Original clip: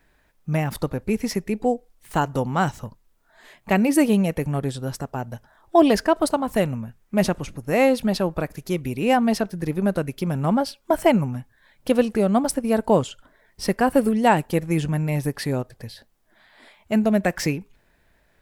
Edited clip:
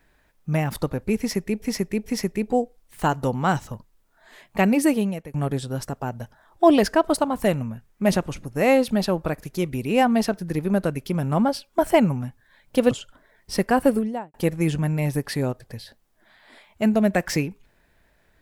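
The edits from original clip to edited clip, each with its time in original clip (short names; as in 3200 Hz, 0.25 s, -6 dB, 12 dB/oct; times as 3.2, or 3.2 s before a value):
1.18–1.62 loop, 3 plays
3.88–4.46 fade out, to -19 dB
12.03–13.01 cut
13.93–14.44 studio fade out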